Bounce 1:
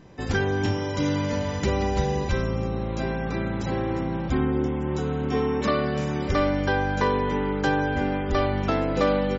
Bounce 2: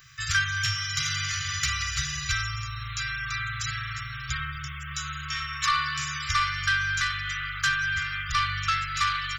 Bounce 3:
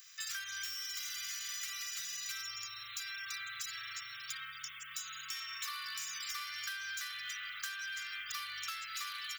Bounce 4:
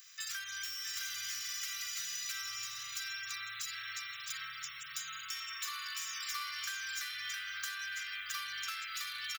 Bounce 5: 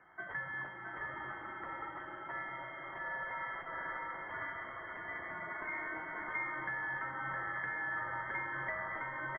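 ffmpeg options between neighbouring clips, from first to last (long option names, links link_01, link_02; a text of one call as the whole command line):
ffmpeg -i in.wav -af "aemphasis=mode=production:type=bsi,asoftclip=type=tanh:threshold=-18.5dB,afftfilt=real='re*(1-between(b*sr/4096,150,1100))':imag='im*(1-between(b*sr/4096,150,1100))':win_size=4096:overlap=0.75,volume=6dB" out.wav
ffmpeg -i in.wav -filter_complex "[0:a]acrossover=split=110|2700[link_01][link_02][link_03];[link_03]volume=34dB,asoftclip=hard,volume=-34dB[link_04];[link_01][link_02][link_04]amix=inputs=3:normalize=0,aderivative,acompressor=threshold=-40dB:ratio=6,volume=2dB" out.wav
ffmpeg -i in.wav -af "aecho=1:1:664:0.596" out.wav
ffmpeg -i in.wav -af "lowpass=frequency=2800:width_type=q:width=0.5098,lowpass=frequency=2800:width_type=q:width=0.6013,lowpass=frequency=2800:width_type=q:width=0.9,lowpass=frequency=2800:width_type=q:width=2.563,afreqshift=-3300,volume=4dB" out.wav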